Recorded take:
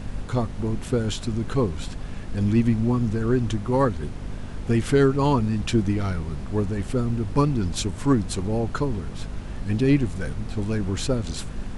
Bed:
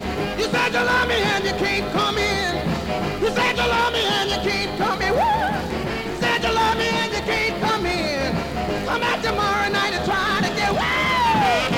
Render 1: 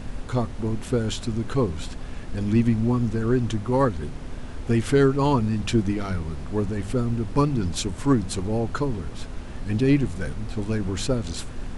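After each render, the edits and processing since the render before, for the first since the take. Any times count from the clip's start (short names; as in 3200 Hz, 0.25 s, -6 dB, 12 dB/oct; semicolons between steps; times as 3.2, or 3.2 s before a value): de-hum 50 Hz, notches 4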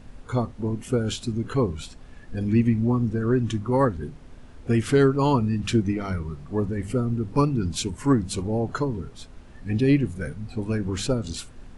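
noise print and reduce 11 dB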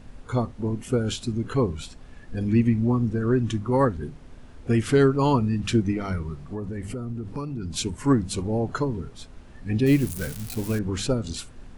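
6.4–7.74 compressor, threshold -28 dBFS; 9.86–10.79 switching spikes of -24 dBFS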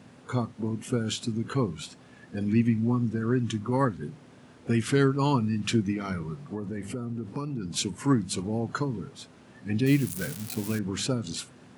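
HPF 120 Hz 24 dB/oct; dynamic EQ 530 Hz, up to -7 dB, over -34 dBFS, Q 0.72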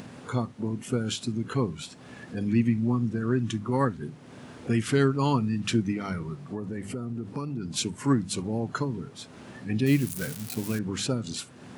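upward compressor, threshold -35 dBFS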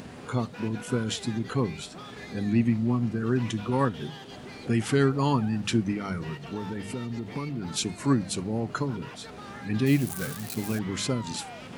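add bed -24 dB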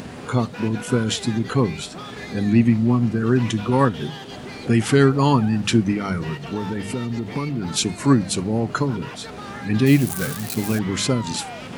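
gain +7.5 dB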